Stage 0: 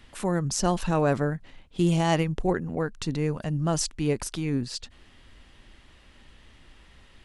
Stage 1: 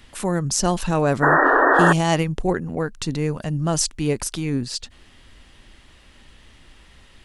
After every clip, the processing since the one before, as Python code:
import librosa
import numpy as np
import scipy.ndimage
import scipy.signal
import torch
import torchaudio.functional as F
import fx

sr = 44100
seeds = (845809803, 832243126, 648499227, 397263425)

y = fx.high_shelf(x, sr, hz=5100.0, db=5.5)
y = fx.spec_paint(y, sr, seeds[0], shape='noise', start_s=1.22, length_s=0.71, low_hz=260.0, high_hz=1900.0, level_db=-19.0)
y = F.gain(torch.from_numpy(y), 3.5).numpy()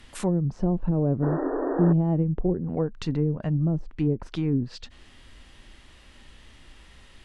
y = fx.hpss(x, sr, part='percussive', gain_db=-4)
y = fx.env_lowpass_down(y, sr, base_hz=360.0, full_db=-18.5)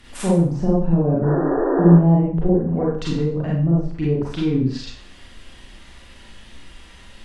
y = fx.rev_schroeder(x, sr, rt60_s=0.49, comb_ms=32, drr_db=-5.5)
y = F.gain(torch.from_numpy(y), 1.0).numpy()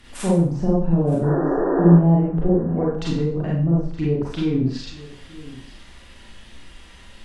y = x + 10.0 ** (-19.0 / 20.0) * np.pad(x, (int(921 * sr / 1000.0), 0))[:len(x)]
y = F.gain(torch.from_numpy(y), -1.0).numpy()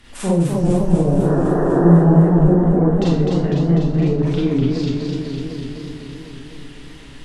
y = fx.echo_warbled(x, sr, ms=250, feedback_pct=73, rate_hz=2.8, cents=131, wet_db=-4.0)
y = F.gain(torch.from_numpy(y), 1.0).numpy()